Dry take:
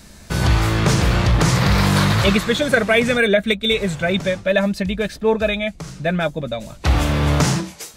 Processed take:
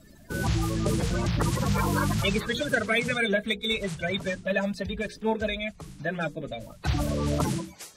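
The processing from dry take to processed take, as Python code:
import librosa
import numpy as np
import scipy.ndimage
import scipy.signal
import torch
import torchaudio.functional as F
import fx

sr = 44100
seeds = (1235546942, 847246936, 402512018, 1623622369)

y = fx.spec_quant(x, sr, step_db=30)
y = fx.hum_notches(y, sr, base_hz=60, count=8)
y = F.gain(torch.from_numpy(y), -8.5).numpy()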